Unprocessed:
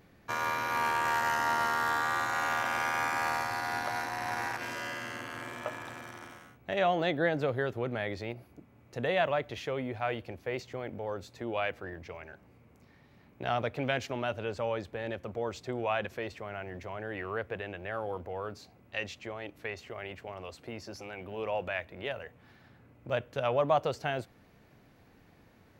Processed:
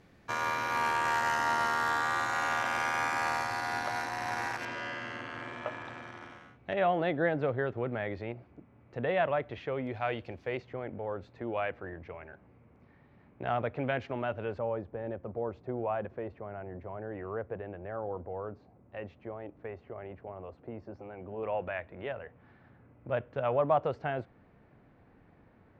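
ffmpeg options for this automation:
-af "asetnsamples=n=441:p=0,asendcmd='4.65 lowpass f 3800;6.73 lowpass f 2200;9.87 lowpass f 4900;10.57 lowpass f 2000;14.59 lowpass f 1000;21.43 lowpass f 1800',lowpass=10k"

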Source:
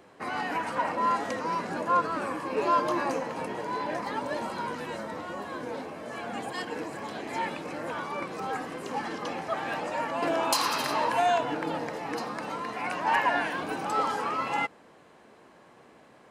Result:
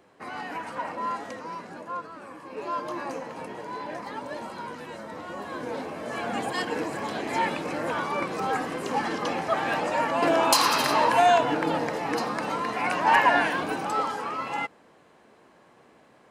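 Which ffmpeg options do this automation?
-af "volume=13.5dB,afade=t=out:st=0.99:d=1.18:silence=0.398107,afade=t=in:st=2.17:d=1.11:silence=0.375837,afade=t=in:st=4.99:d=1.24:silence=0.354813,afade=t=out:st=13.45:d=0.68:silence=0.446684"

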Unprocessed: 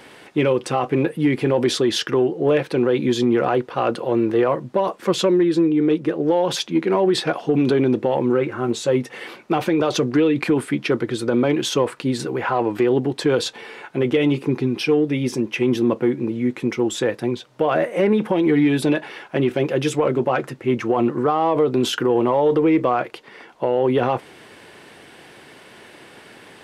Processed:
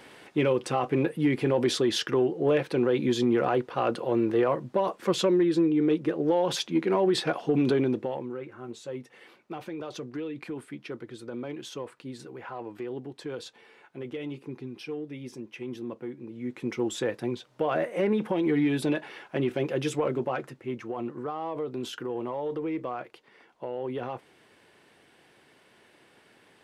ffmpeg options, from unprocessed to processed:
-af "volume=4dB,afade=t=out:st=7.72:d=0.57:silence=0.251189,afade=t=in:st=16.29:d=0.5:silence=0.316228,afade=t=out:st=20.01:d=0.79:silence=0.446684"

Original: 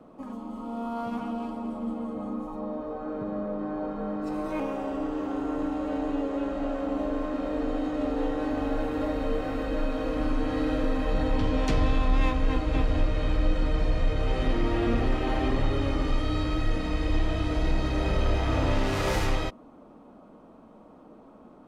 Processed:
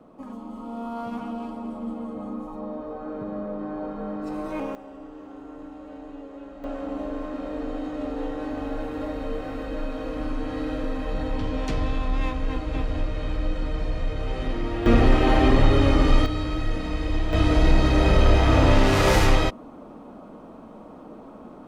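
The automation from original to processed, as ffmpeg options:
-af "asetnsamples=n=441:p=0,asendcmd='4.75 volume volume -11dB;6.64 volume volume -2dB;14.86 volume volume 8.5dB;16.26 volume volume 0.5dB;17.33 volume volume 8dB',volume=0dB"

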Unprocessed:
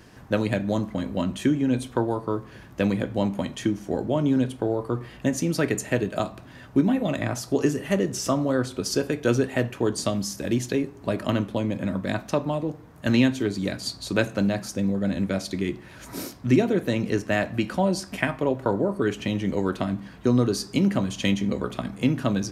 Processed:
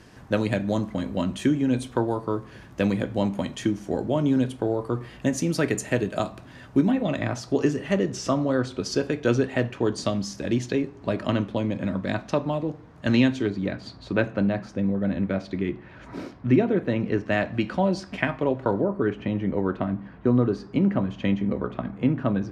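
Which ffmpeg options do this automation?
-af "asetnsamples=n=441:p=0,asendcmd='6.91 lowpass f 5400;13.5 lowpass f 2400;17.26 lowpass f 4100;18.84 lowpass f 1800',lowpass=11k"

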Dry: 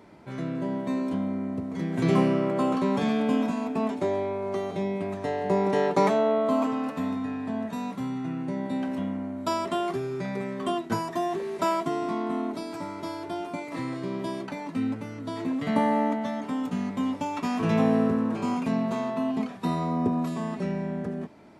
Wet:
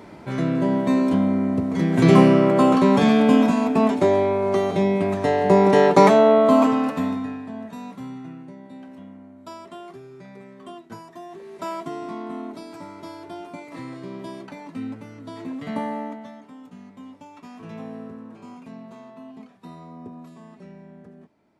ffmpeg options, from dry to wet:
-af "volume=17dB,afade=t=out:st=6.66:d=0.82:silence=0.237137,afade=t=out:st=8.11:d=0.46:silence=0.398107,afade=t=in:st=11.28:d=0.57:silence=0.398107,afade=t=out:st=15.72:d=0.78:silence=0.298538"

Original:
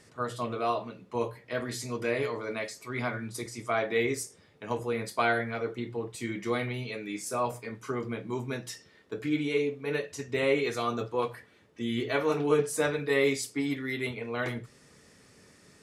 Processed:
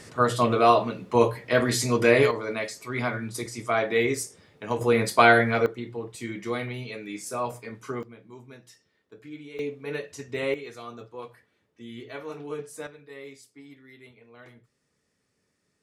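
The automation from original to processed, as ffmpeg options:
-af "asetnsamples=n=441:p=0,asendcmd='2.31 volume volume 4dB;4.81 volume volume 10dB;5.66 volume volume 0dB;8.03 volume volume -12.5dB;9.59 volume volume -1.5dB;10.54 volume volume -10dB;12.87 volume volume -17.5dB',volume=11dB"

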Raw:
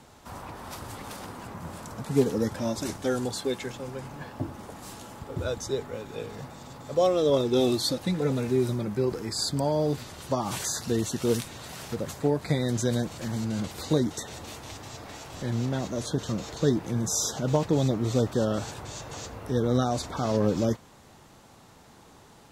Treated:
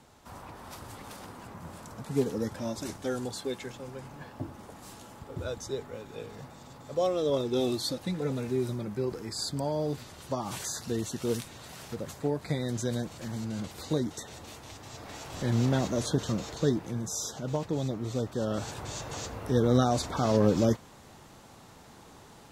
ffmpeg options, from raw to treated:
-af "volume=11dB,afade=t=in:st=14.8:d=0.89:silence=0.398107,afade=t=out:st=15.69:d=1.39:silence=0.316228,afade=t=in:st=18.35:d=0.54:silence=0.398107"

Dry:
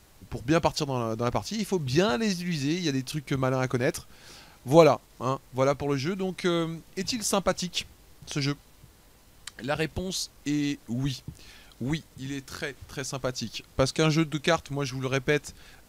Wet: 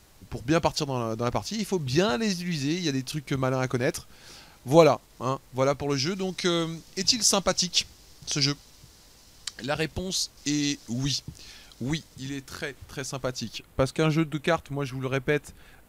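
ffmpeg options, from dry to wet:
-af "asetnsamples=n=441:p=0,asendcmd='5.9 equalizer g 11;9.66 equalizer g 5;10.37 equalizer g 14.5;11.19 equalizer g 7.5;12.29 equalizer g -0.5;13.58 equalizer g -9',equalizer=f=5.3k:t=o:w=1.1:g=2"

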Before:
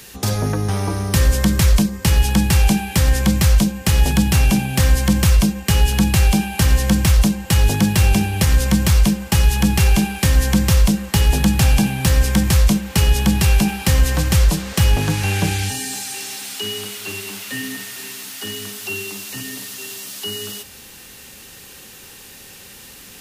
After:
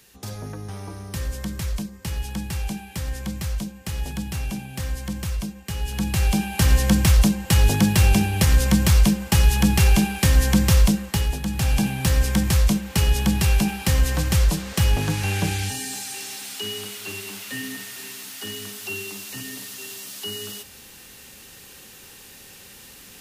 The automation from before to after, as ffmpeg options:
-af "volume=6.5dB,afade=t=in:st=5.79:d=0.94:silence=0.251189,afade=t=out:st=10.84:d=0.57:silence=0.281838,afade=t=in:st=11.41:d=0.46:silence=0.375837"

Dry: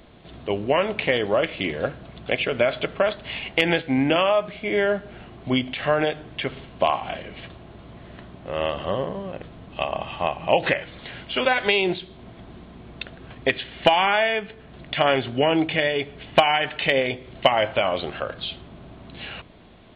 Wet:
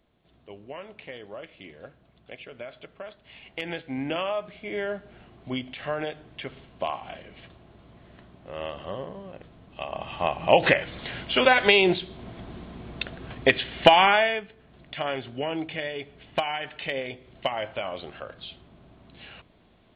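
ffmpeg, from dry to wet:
-af "volume=2dB,afade=t=in:st=3.24:d=0.94:silence=0.316228,afade=t=in:st=9.82:d=0.82:silence=0.281838,afade=t=out:st=14.04:d=0.44:silence=0.251189"

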